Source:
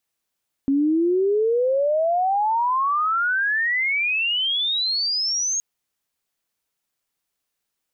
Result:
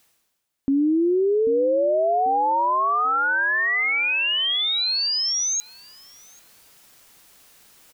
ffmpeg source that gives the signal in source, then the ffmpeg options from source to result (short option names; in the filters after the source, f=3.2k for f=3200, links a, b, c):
-f lavfi -i "aevalsrc='pow(10,(-16-4.5*t/4.92)/20)*sin(2*PI*270*4.92/log(6600/270)*(exp(log(6600/270)*t/4.92)-1))':d=4.92:s=44100"
-filter_complex "[0:a]areverse,acompressor=mode=upward:threshold=-31dB:ratio=2.5,areverse,asplit=2[a][b];[b]adelay=790,lowpass=f=950:p=1,volume=-11dB,asplit=2[c][d];[d]adelay=790,lowpass=f=950:p=1,volume=0.41,asplit=2[e][f];[f]adelay=790,lowpass=f=950:p=1,volume=0.41,asplit=2[g][h];[h]adelay=790,lowpass=f=950:p=1,volume=0.41[i];[a][c][e][g][i]amix=inputs=5:normalize=0"